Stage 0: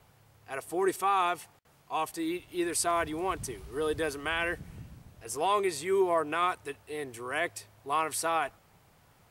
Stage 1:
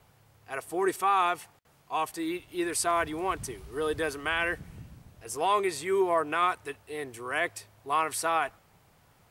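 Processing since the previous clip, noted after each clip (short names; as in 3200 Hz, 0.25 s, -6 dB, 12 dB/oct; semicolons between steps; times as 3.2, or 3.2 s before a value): dynamic EQ 1500 Hz, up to +3 dB, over -42 dBFS, Q 0.76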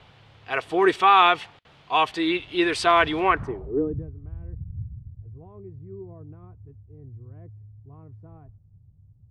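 low-pass sweep 3400 Hz -> 100 Hz, 3.18–4.1; gain +8 dB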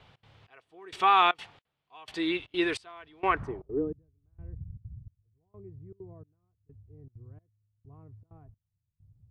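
step gate "xx.xxx......xxx" 195 bpm -24 dB; gain -5.5 dB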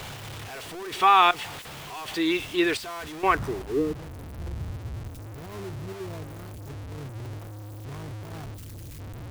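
zero-crossing step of -37 dBFS; gain +3.5 dB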